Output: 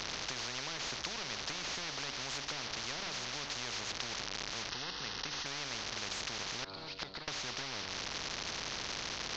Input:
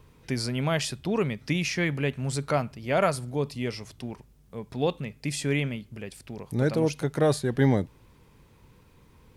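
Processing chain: one-bit delta coder 32 kbps, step -40 dBFS; 6.64–7.28 s: inverted gate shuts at -26 dBFS, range -29 dB; resonant low-pass 4.3 kHz, resonance Q 9; de-hum 95.62 Hz, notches 15; compression, threshold -29 dBFS, peak gain reduction 12 dB; 4.69–5.46 s: static phaser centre 2.3 kHz, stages 6; spectrum-flattening compressor 10:1; trim -4 dB

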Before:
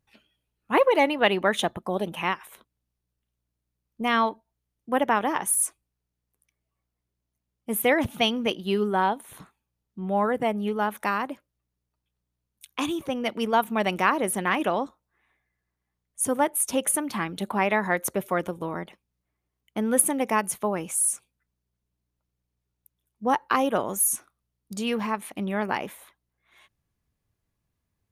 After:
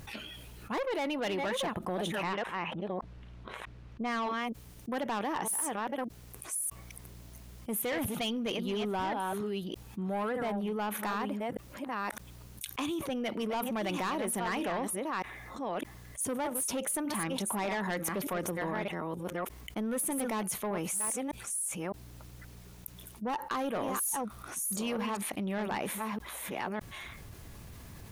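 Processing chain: chunks repeated in reverse 609 ms, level -8 dB; 2.23–4.23 s: low-pass 2.7 kHz 12 dB/octave; saturation -21.5 dBFS, distortion -10 dB; level flattener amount 70%; trim -8.5 dB

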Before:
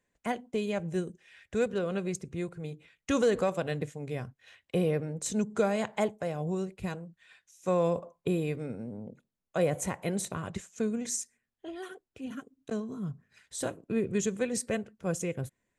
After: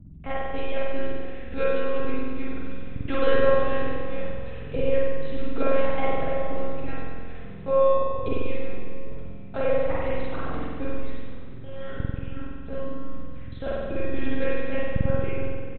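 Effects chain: word length cut 10-bit, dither none; hum 60 Hz, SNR 17 dB; monotone LPC vocoder at 8 kHz 270 Hz; frequency-shifting echo 463 ms, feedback 59%, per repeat -38 Hz, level -18.5 dB; spring tank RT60 1.7 s, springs 46 ms, chirp 70 ms, DRR -6.5 dB

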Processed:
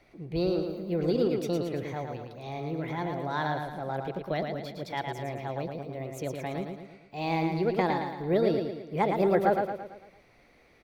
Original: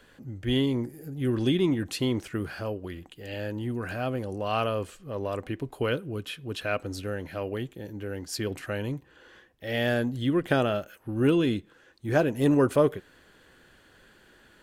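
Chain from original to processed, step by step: treble shelf 2.3 kHz -11.5 dB; feedback delay 151 ms, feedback 48%, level -5 dB; speed mistake 33 rpm record played at 45 rpm; trim -2.5 dB

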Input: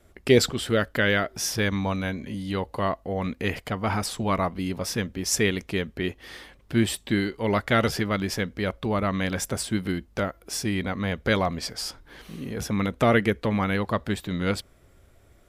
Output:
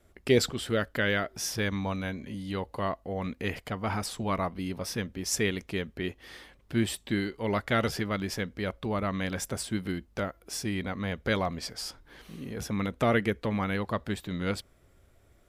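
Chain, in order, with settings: 4.30–5.12 s: band-stop 7.2 kHz, Q 8; trim -5 dB

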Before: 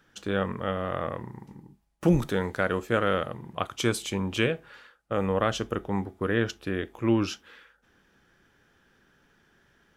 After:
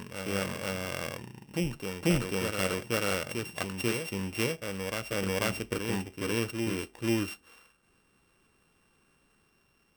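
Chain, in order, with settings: sorted samples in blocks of 16 samples; reverse echo 491 ms -4.5 dB; trim -5 dB

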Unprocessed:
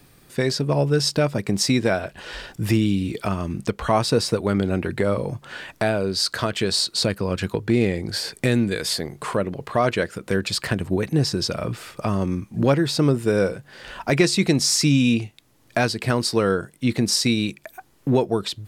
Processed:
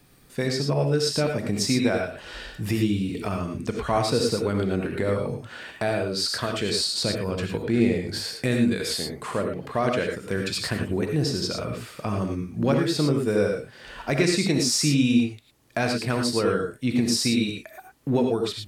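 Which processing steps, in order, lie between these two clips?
gated-style reverb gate 130 ms rising, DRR 2.5 dB; trim -5 dB

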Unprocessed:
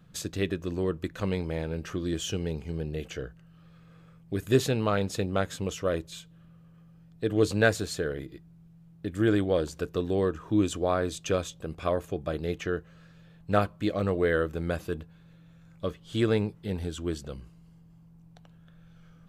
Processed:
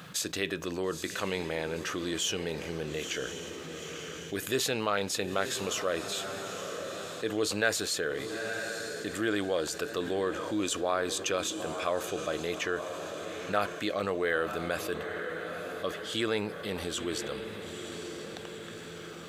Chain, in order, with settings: high-pass 940 Hz 6 dB/octave; echo that smears into a reverb 922 ms, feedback 43%, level -14 dB; level flattener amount 50%; trim -2 dB

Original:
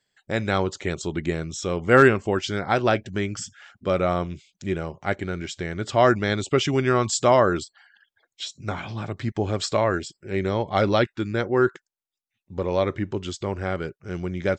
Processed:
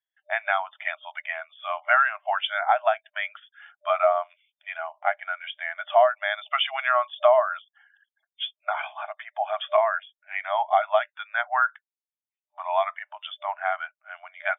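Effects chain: FFT band-pass 600–3600 Hz; compression 6:1, threshold -27 dBFS, peak gain reduction 13 dB; spectral contrast expander 1.5:1; trim +8.5 dB

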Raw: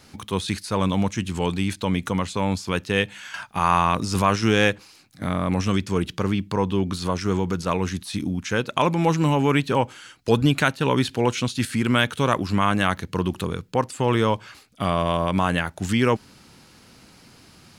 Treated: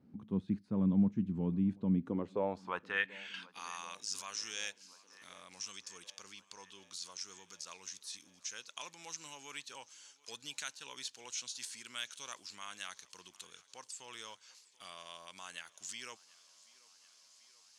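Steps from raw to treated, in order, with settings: band-pass sweep 210 Hz -> 6.3 kHz, 1.94–3.71 s; thinning echo 734 ms, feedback 76%, high-pass 240 Hz, level -23 dB; trim -4 dB

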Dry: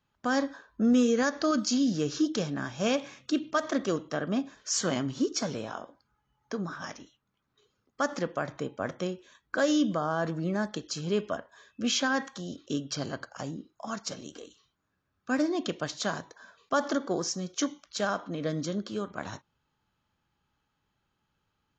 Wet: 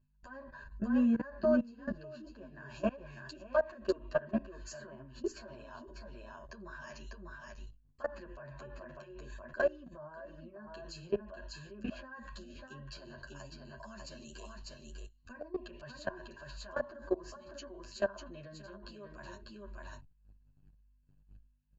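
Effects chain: high-pass 54 Hz; hum 50 Hz, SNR 21 dB; low-pass that closes with the level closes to 1.3 kHz, closed at -25 dBFS; rippled EQ curve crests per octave 1.4, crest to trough 16 dB; delay 597 ms -7 dB; level held to a coarse grid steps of 22 dB; peaking EQ 230 Hz -5 dB 2.3 oct; endless flanger 9.5 ms -1.9 Hz; trim +1 dB

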